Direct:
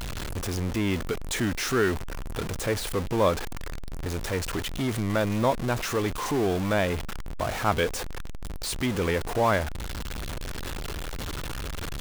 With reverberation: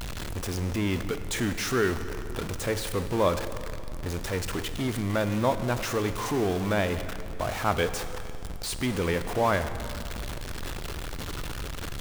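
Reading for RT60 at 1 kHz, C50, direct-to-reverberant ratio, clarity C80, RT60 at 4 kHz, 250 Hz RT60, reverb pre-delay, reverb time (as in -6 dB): 2.6 s, 10.5 dB, 10.0 dB, 11.5 dB, 2.2 s, 2.9 s, 24 ms, 2.7 s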